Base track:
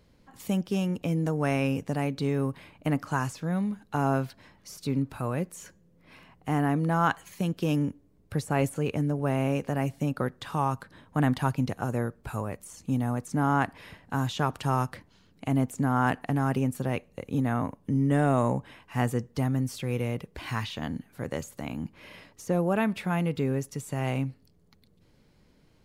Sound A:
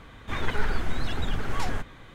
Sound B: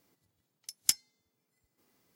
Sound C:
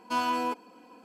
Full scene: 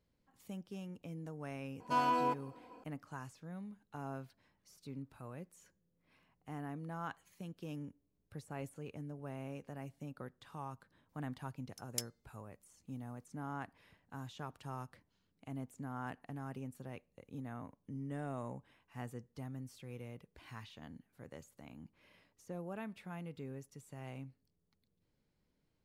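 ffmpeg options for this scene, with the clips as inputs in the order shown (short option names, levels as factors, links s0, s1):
-filter_complex "[0:a]volume=0.119[s0];[3:a]equalizer=f=610:t=o:w=2.8:g=9,atrim=end=1.04,asetpts=PTS-STARTPTS,volume=0.299,afade=t=in:d=0.004:c=hsin,afade=t=out:st=1.036:d=0.004:c=hsin,adelay=1800[s1];[2:a]atrim=end=2.15,asetpts=PTS-STARTPTS,volume=0.237,afade=t=in:d=0.004:c=hsin,afade=t=out:st=2.146:d=0.004:c=hsin,adelay=11090[s2];[s0][s1][s2]amix=inputs=3:normalize=0"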